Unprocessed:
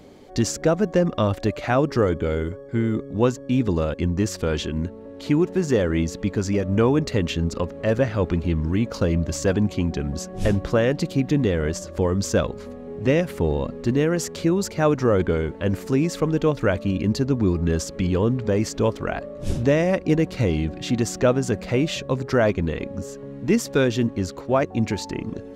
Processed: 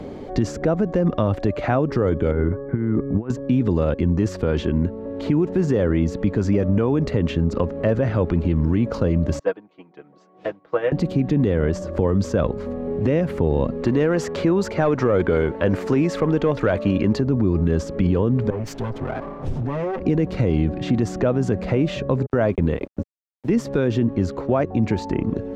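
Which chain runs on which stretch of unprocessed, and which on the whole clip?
0:02.31–0:03.30: low-pass filter 2,000 Hz 24 dB per octave + compressor whose output falls as the input rises −25 dBFS, ratio −0.5 + parametric band 530 Hz −6 dB 0.51 octaves
0:09.39–0:10.92: band-pass filter 510–3,600 Hz + comb filter 6.3 ms, depth 76% + expander for the loud parts 2.5 to 1, over −35 dBFS
0:13.82–0:17.21: mid-hump overdrive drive 11 dB, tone 3,600 Hz, clips at −7.5 dBFS + high-shelf EQ 5,800 Hz +7.5 dB
0:18.50–0:20.00: lower of the sound and its delayed copy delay 7.8 ms + downward compressor 12 to 1, threshold −29 dBFS + multiband upward and downward expander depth 100%
0:22.26–0:23.50: noise gate −28 dBFS, range −38 dB + bit-depth reduction 10 bits, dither none
whole clip: low-pass filter 1,100 Hz 6 dB per octave; brickwall limiter −17 dBFS; multiband upward and downward compressor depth 40%; level +6 dB

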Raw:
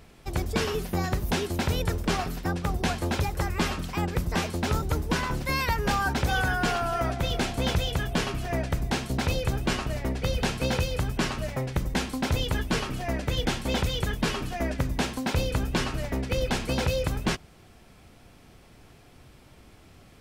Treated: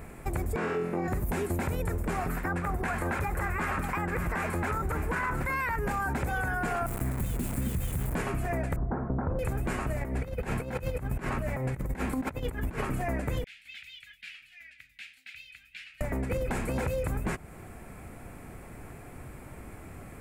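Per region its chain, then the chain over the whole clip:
0:00.56–0:01.08: high-pass filter 280 Hz + head-to-tape spacing loss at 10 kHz 20 dB + flutter between parallel walls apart 4 metres, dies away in 0.58 s
0:02.29–0:05.76: parametric band 1,500 Hz +9.5 dB 1.7 octaves + single-tap delay 585 ms −14 dB
0:06.86–0:08.15: drawn EQ curve 230 Hz 0 dB, 690 Hz −19 dB, 1,900 Hz −29 dB, 2,900 Hz −6 dB, 5,300 Hz −8 dB, 13,000 Hz +2 dB + bit-depth reduction 6 bits, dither none
0:08.76–0:09.39: variable-slope delta modulation 32 kbit/s + Butterworth low-pass 1,400 Hz
0:10.01–0:12.85: dynamic equaliser 8,500 Hz, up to −6 dB, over −49 dBFS, Q 0.71 + compressor whose output falls as the input rises −32 dBFS, ratio −0.5
0:13.44–0:16.01: inverse Chebyshev high-pass filter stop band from 1,100 Hz, stop band 50 dB + high-frequency loss of the air 340 metres
whole clip: flat-topped bell 4,200 Hz −14.5 dB 1.3 octaves; brickwall limiter −22.5 dBFS; downward compressor 2.5 to 1, threshold −39 dBFS; level +8 dB

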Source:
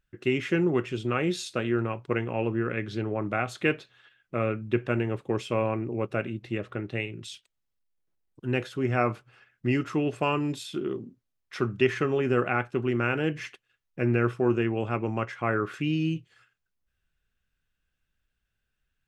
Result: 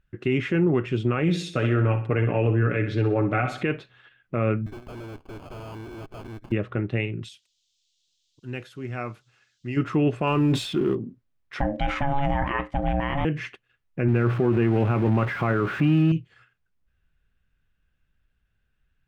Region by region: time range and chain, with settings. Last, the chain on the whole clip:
0:01.22–0:03.63: notch filter 980 Hz + comb filter 6.9 ms, depth 58% + repeating echo 62 ms, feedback 46%, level −11 dB
0:04.66–0:06.52: lower of the sound and its delayed copy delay 2.9 ms + tube saturation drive 43 dB, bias 0.8 + sample-rate reduction 1,900 Hz
0:07.28–0:09.76: first-order pre-emphasis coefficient 0.8 + noise in a band 3,200–7,400 Hz −71 dBFS
0:10.27–0:10.95: mu-law and A-law mismatch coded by mu + level that may fall only so fast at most 41 dB per second
0:11.60–0:13.25: transient designer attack −2 dB, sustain +4 dB + ring modulation 420 Hz
0:14.08–0:16.12: converter with a step at zero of −32 dBFS + high-pass filter 180 Hz 6 dB per octave + bass and treble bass +6 dB, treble −10 dB
whole clip: bass and treble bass +5 dB, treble −11 dB; brickwall limiter −17.5 dBFS; level +4.5 dB

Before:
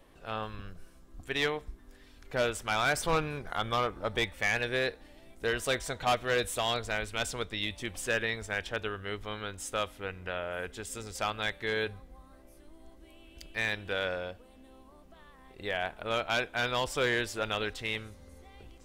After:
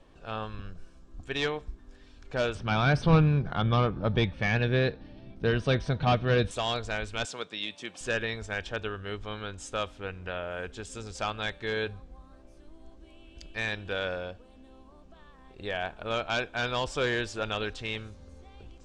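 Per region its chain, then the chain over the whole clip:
0:02.55–0:06.51: Savitzky-Golay smoothing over 15 samples + parametric band 150 Hz +14 dB 1.7 octaves
0:07.25–0:08.01: high-pass filter 140 Hz 24 dB per octave + low-shelf EQ 360 Hz −8 dB
whole clip: low-pass filter 7,600 Hz 24 dB per octave; low-shelf EQ 250 Hz +4 dB; notch filter 2,000 Hz, Q 9

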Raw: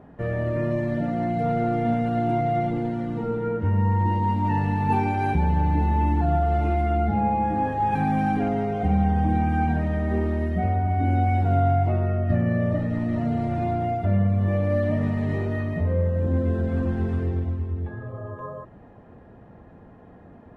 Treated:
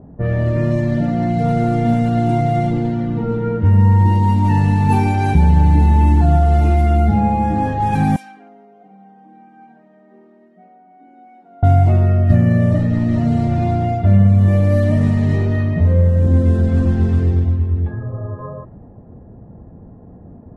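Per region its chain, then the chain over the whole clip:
0:08.16–0:11.63: Butterworth high-pass 180 Hz 48 dB per octave + first difference
whole clip: low-pass that shuts in the quiet parts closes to 630 Hz, open at −18 dBFS; bass and treble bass +7 dB, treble +15 dB; level +4 dB

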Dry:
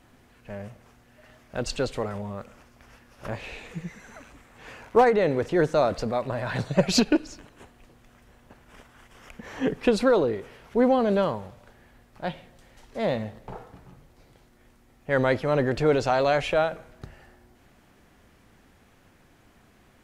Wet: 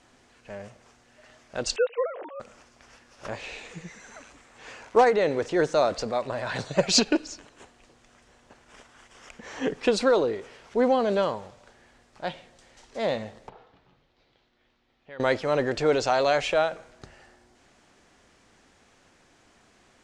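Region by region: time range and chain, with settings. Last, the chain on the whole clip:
0:01.76–0:02.40: three sine waves on the formant tracks + dynamic equaliser 660 Hz, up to +4 dB, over −39 dBFS, Q 1.3
0:13.49–0:15.20: downward compressor 2.5 to 1, threshold −36 dBFS + transistor ladder low-pass 4,400 Hz, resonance 40%
whole clip: low-pass filter 8,000 Hz 24 dB per octave; bass and treble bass −8 dB, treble +7 dB

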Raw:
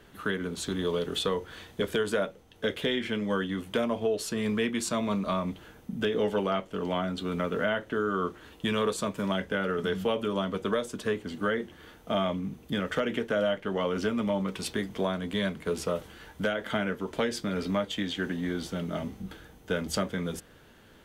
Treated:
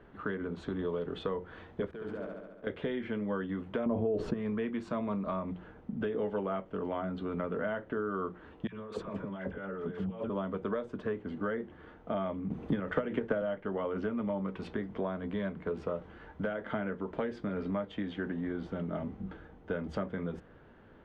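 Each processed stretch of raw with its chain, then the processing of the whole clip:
0:01.91–0:02.67: slack as between gear wheels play −33 dBFS + output level in coarse steps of 20 dB + flutter between parallel walls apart 12 metres, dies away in 1.3 s
0:03.86–0:04.34: tilt shelving filter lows +7.5 dB, about 810 Hz + envelope flattener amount 70%
0:08.67–0:10.30: compressor whose output falls as the input rises −34 dBFS, ratio −0.5 + all-pass dispersion lows, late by 60 ms, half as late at 1,000 Hz
0:12.50–0:13.42: high-shelf EQ 11,000 Hz +11 dB + transient designer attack +11 dB, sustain +5 dB + multiband upward and downward compressor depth 40%
whole clip: low-pass filter 1,500 Hz 12 dB per octave; mains-hum notches 60/120/180 Hz; downward compressor 2 to 1, threshold −34 dBFS

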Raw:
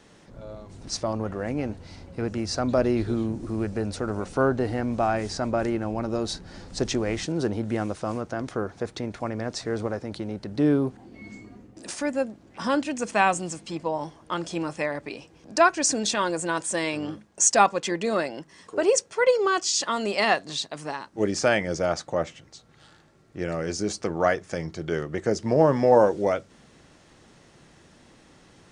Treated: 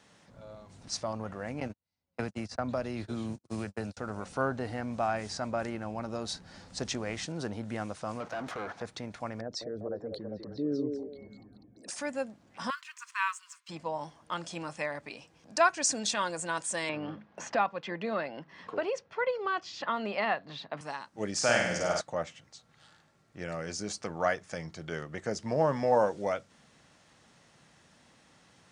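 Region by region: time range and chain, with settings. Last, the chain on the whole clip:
0:01.60–0:03.97: noise gate −30 dBFS, range −51 dB + multiband upward and downward compressor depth 100%
0:08.20–0:08.82: noise gate −43 dBFS, range −9 dB + downward compressor 2 to 1, threshold −35 dBFS + mid-hump overdrive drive 27 dB, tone 1,600 Hz, clips at −20 dBFS
0:09.41–0:11.96: spectral envelope exaggerated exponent 2 + echo through a band-pass that steps 198 ms, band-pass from 420 Hz, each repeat 0.7 octaves, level −1.5 dB
0:12.70–0:13.69: mu-law and A-law mismatch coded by A + linear-phase brick-wall high-pass 950 Hz + spectral tilt −2.5 dB per octave
0:16.89–0:20.81: high-frequency loss of the air 320 metres + multiband upward and downward compressor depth 70%
0:21.35–0:22.01: high-shelf EQ 6,000 Hz +5.5 dB + flutter between parallel walls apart 8.6 metres, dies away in 0.89 s
whole clip: high-pass filter 140 Hz 6 dB per octave; parametric band 360 Hz −8.5 dB 0.87 octaves; level −4.5 dB

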